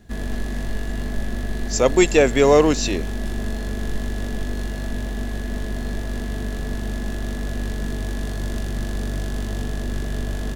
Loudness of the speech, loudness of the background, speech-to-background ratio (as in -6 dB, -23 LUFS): -17.5 LUFS, -28.5 LUFS, 11.0 dB